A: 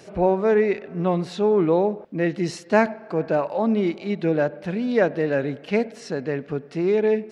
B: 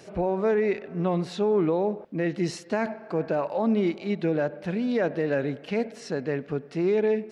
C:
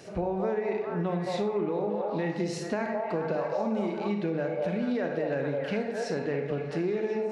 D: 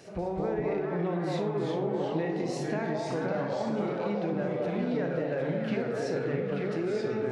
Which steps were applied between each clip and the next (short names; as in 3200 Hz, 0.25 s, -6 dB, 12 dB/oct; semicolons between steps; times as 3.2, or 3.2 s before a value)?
limiter -14 dBFS, peak gain reduction 9.5 dB; gain -2 dB
delay with a stepping band-pass 0.212 s, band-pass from 670 Hz, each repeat 0.7 oct, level -1 dB; reverb RT60 0.55 s, pre-delay 30 ms, DRR 5 dB; compressor, threshold -26 dBFS, peak gain reduction 10 dB
echoes that change speed 0.188 s, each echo -2 st, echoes 2; gain -3 dB